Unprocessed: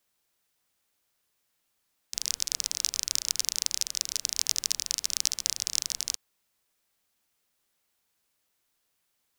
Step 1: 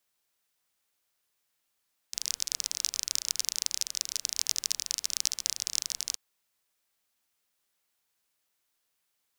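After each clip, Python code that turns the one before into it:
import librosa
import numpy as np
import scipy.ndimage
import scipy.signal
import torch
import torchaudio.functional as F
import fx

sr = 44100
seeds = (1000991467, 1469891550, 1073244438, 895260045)

y = fx.low_shelf(x, sr, hz=470.0, db=-5.0)
y = y * librosa.db_to_amplitude(-2.0)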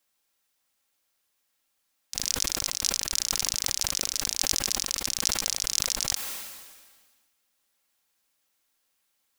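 y = fx.rider(x, sr, range_db=10, speed_s=0.5)
y = y + 0.34 * np.pad(y, (int(3.7 * sr / 1000.0), 0))[:len(y)]
y = fx.sustainer(y, sr, db_per_s=38.0)
y = y * librosa.db_to_amplitude(1.5)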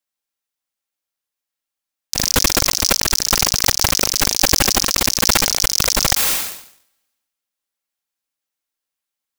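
y = fx.leveller(x, sr, passes=5)
y = y + 10.0 ** (-20.5 / 20.0) * np.pad(y, (int(213 * sr / 1000.0), 0))[:len(y)]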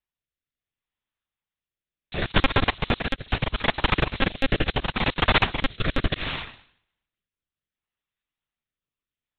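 y = fx.lpc_monotone(x, sr, seeds[0], pitch_hz=270.0, order=8)
y = fx.rotary(y, sr, hz=0.7)
y = fx.transient(y, sr, attack_db=-2, sustain_db=-8)
y = y * librosa.db_to_amplitude(1.5)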